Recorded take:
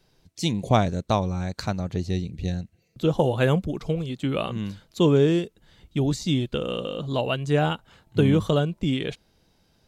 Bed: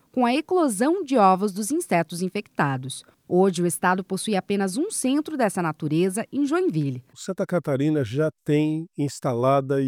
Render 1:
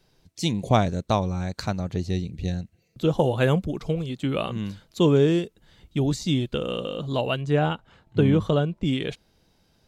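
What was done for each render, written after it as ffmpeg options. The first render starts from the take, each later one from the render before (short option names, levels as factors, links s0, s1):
-filter_complex "[0:a]asettb=1/sr,asplit=3[s0][s1][s2];[s0]atrim=end=7.414[s3];[s1]atrim=start=7.41:end=8.85,asetpts=PTS-STARTPTS,afade=t=in:d=0.004:c=qsin,afade=t=out:st=1.436:d=0.004:c=qsin,lowpass=f=3000:p=1[s4];[s2]atrim=start=8.846[s5];[s3][s4]acrossfade=d=0.004:c1=hsin:c2=qsin[s6];[s6][s5]acrossfade=d=0.004:c1=qsin:c2=hsin"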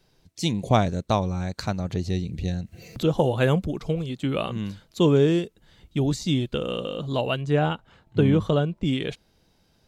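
-filter_complex "[0:a]asettb=1/sr,asplit=3[s0][s1][s2];[s0]atrim=end=1.854[s3];[s1]atrim=start=1.85:end=3.73,asetpts=PTS-STARTPTS,afade=t=in:d=0.004:c=qsin,afade=t=out:st=1.876:d=0.004:c=qsin,acompressor=mode=upward:threshold=0.0631:ratio=2.5:attack=3.2:release=140:knee=2.83:detection=peak[s4];[s2]atrim=start=3.726[s5];[s3][s4]acrossfade=d=0.004:c1=hsin:c2=qsin[s6];[s6][s5]acrossfade=d=0.004:c1=qsin:c2=hsin"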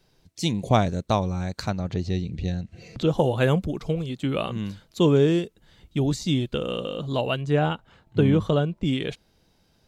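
-filter_complex "[0:a]asettb=1/sr,asplit=3[s0][s1][s2];[s0]atrim=end=1.704[s3];[s1]atrim=start=1.7:end=3.07,asetpts=PTS-STARTPTS,afade=t=in:d=0.004:c=qsin,afade=t=out:st=1.366:d=0.004:c=qsin,lowpass=5900[s4];[s2]atrim=start=3.066[s5];[s3][s4]acrossfade=d=0.004:c1=hsin:c2=qsin[s6];[s6][s5]acrossfade=d=0.004:c1=qsin:c2=hsin"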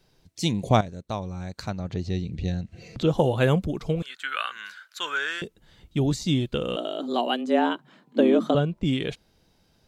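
-filter_complex "[0:a]asettb=1/sr,asplit=3[s0][s1][s2];[s0]atrim=end=4.024[s3];[s1]atrim=start=4.02:end=5.42,asetpts=PTS-STARTPTS,afade=t=in:d=0.004:c=qsin,afade=t=out:st=1.396:d=0.004:c=qsin,highpass=f=1500:t=q:w=7.9[s4];[s2]atrim=start=5.416[s5];[s3][s4]acrossfade=d=0.004:c1=hsin:c2=qsin[s6];[s6][s5]acrossfade=d=0.004:c1=qsin:c2=hsin,asettb=1/sr,asplit=3[s7][s8][s9];[s7]atrim=end=6.764[s10];[s8]atrim=start=6.76:end=8.55,asetpts=PTS-STARTPTS,afade=t=in:d=0.004:c=qsin,afade=t=out:st=1.786:d=0.004:c=qsin,afreqshift=120[s11];[s9]atrim=start=8.546[s12];[s10][s11]acrossfade=d=0.004:c1=hsin:c2=qsin[s13];[s13][s12]acrossfade=d=0.004:c1=qsin:c2=hsin,asplit=2[s14][s15];[s14]atrim=end=0.81,asetpts=PTS-STARTPTS,afade=t=out:st=0.806:d=0.004:c=hsin:silence=0.237137[s16];[s15]atrim=start=0.81,asetpts=PTS-STARTPTS,afade=t=in:d=1.73:silence=0.237137[s17];[s16][s17]concat=n=2:v=0:a=1"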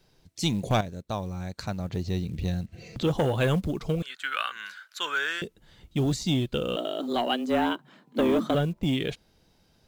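-filter_complex "[0:a]acrossover=split=2000[s0][s1];[s0]asoftclip=type=tanh:threshold=0.126[s2];[s2][s1]amix=inputs=2:normalize=0,acrusher=bits=8:mode=log:mix=0:aa=0.000001"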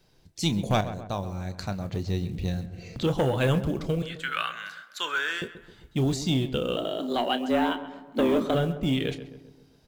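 -filter_complex "[0:a]asplit=2[s0][s1];[s1]adelay=30,volume=0.237[s2];[s0][s2]amix=inputs=2:normalize=0,asplit=2[s3][s4];[s4]adelay=132,lowpass=f=1800:p=1,volume=0.251,asplit=2[s5][s6];[s6]adelay=132,lowpass=f=1800:p=1,volume=0.53,asplit=2[s7][s8];[s8]adelay=132,lowpass=f=1800:p=1,volume=0.53,asplit=2[s9][s10];[s10]adelay=132,lowpass=f=1800:p=1,volume=0.53,asplit=2[s11][s12];[s12]adelay=132,lowpass=f=1800:p=1,volume=0.53,asplit=2[s13][s14];[s14]adelay=132,lowpass=f=1800:p=1,volume=0.53[s15];[s3][s5][s7][s9][s11][s13][s15]amix=inputs=7:normalize=0"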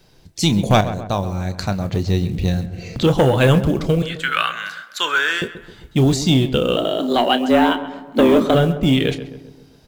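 -af "volume=3.16,alimiter=limit=0.708:level=0:latency=1"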